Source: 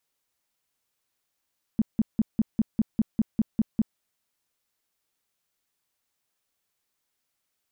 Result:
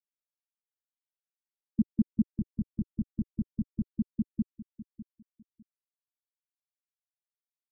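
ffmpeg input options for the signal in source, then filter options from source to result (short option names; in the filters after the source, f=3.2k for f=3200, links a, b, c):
-f lavfi -i "aevalsrc='0.141*sin(2*PI*220*mod(t,0.2))*lt(mod(t,0.2),6/220)':d=2.2:s=44100"
-af "afftfilt=real='re*gte(hypot(re,im),0.112)':imag='im*gte(hypot(re,im),0.112)':win_size=1024:overlap=0.75,aecho=1:1:602|1204|1806:0.708|0.135|0.0256"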